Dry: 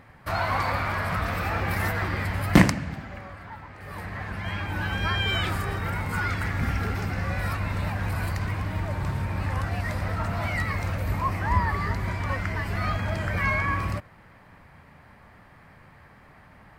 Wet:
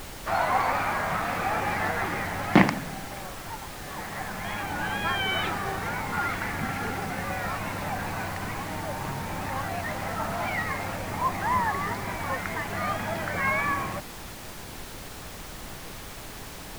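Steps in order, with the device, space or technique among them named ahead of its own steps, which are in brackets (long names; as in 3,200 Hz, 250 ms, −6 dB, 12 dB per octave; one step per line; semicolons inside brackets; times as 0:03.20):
horn gramophone (band-pass filter 180–3,600 Hz; parametric band 790 Hz +7 dB 0.32 octaves; tape wow and flutter; pink noise bed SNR 10 dB)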